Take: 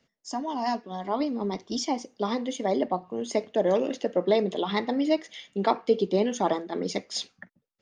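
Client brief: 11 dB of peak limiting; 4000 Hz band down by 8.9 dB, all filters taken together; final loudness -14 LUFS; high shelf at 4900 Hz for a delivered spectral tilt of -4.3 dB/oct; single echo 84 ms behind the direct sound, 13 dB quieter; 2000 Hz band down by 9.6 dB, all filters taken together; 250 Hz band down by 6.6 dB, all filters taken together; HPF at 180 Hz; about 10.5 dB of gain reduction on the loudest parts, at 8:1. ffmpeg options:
-af "highpass=180,equalizer=f=250:t=o:g=-7,equalizer=f=2k:t=o:g=-8.5,equalizer=f=4k:t=o:g=-5,highshelf=f=4.9k:g=-8,acompressor=threshold=-30dB:ratio=8,alimiter=level_in=6dB:limit=-24dB:level=0:latency=1,volume=-6dB,aecho=1:1:84:0.224,volume=26.5dB"

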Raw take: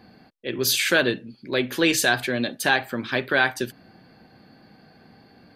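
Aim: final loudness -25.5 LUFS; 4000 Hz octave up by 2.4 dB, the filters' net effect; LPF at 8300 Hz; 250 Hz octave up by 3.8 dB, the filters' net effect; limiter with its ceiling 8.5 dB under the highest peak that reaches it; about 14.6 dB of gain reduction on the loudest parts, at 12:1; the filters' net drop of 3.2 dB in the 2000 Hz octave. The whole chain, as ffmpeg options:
-af "lowpass=8.3k,equalizer=f=250:t=o:g=5,equalizer=f=2k:t=o:g=-5.5,equalizer=f=4k:t=o:g=4.5,acompressor=threshold=-29dB:ratio=12,volume=9.5dB,alimiter=limit=-14dB:level=0:latency=1"

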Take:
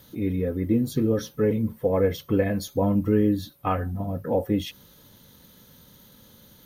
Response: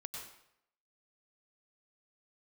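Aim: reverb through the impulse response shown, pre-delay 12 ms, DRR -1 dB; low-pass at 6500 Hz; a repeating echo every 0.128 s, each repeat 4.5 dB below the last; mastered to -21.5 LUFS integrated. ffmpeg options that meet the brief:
-filter_complex "[0:a]lowpass=6.5k,aecho=1:1:128|256|384|512|640|768|896|1024|1152:0.596|0.357|0.214|0.129|0.0772|0.0463|0.0278|0.0167|0.01,asplit=2[a][b];[1:a]atrim=start_sample=2205,adelay=12[c];[b][c]afir=irnorm=-1:irlink=0,volume=3dB[d];[a][d]amix=inputs=2:normalize=0,volume=-0.5dB"

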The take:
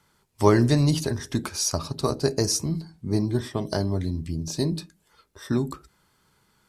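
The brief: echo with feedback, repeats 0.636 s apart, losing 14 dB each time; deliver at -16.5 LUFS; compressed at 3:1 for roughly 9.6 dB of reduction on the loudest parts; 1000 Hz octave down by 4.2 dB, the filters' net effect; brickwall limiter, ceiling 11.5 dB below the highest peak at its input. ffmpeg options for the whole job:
-af "equalizer=f=1k:t=o:g=-5,acompressor=threshold=-26dB:ratio=3,alimiter=limit=-23.5dB:level=0:latency=1,aecho=1:1:636|1272:0.2|0.0399,volume=17.5dB"

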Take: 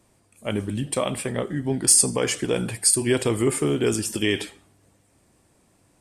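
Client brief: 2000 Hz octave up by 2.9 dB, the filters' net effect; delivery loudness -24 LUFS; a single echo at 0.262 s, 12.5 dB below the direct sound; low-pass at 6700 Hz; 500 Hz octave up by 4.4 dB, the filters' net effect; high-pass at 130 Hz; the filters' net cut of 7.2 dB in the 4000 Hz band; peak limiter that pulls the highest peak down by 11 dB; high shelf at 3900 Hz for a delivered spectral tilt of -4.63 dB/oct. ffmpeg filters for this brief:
-af "highpass=130,lowpass=6.7k,equalizer=f=500:t=o:g=5.5,equalizer=f=2k:t=o:g=7,highshelf=f=3.9k:g=-7,equalizer=f=4k:t=o:g=-8,alimiter=limit=-17.5dB:level=0:latency=1,aecho=1:1:262:0.237,volume=4dB"

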